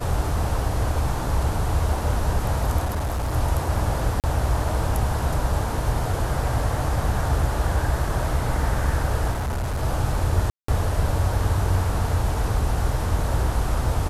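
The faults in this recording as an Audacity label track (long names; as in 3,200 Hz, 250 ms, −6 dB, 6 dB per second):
2.840000	3.340000	clipping −21.5 dBFS
4.200000	4.240000	drop-out 38 ms
9.310000	9.830000	clipping −22.5 dBFS
10.500000	10.680000	drop-out 184 ms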